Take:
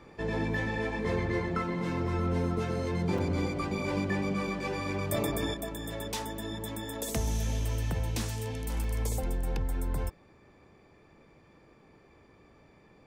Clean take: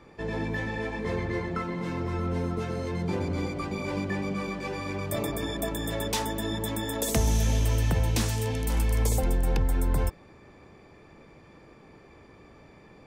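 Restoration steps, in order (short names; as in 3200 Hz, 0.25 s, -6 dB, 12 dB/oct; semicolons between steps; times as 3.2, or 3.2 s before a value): interpolate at 3.18/8.84, 3.8 ms; gain 0 dB, from 5.54 s +6.5 dB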